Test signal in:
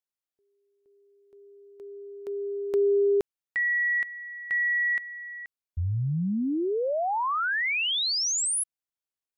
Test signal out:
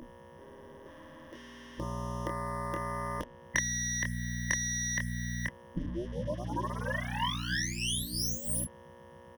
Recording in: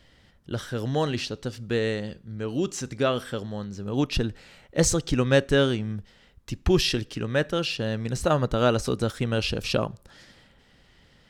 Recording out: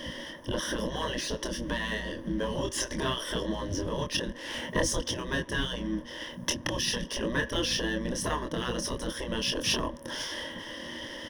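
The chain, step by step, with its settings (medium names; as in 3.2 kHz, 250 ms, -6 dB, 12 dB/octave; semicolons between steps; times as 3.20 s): bass shelf 420 Hz +8.5 dB; compression 16:1, threshold -33 dBFS; mains buzz 60 Hz, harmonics 4, -48 dBFS -2 dB/octave; doubling 25 ms -4.5 dB; waveshaping leveller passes 2; rippled EQ curve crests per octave 1.2, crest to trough 15 dB; spectral gate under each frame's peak -10 dB weak; trim +6.5 dB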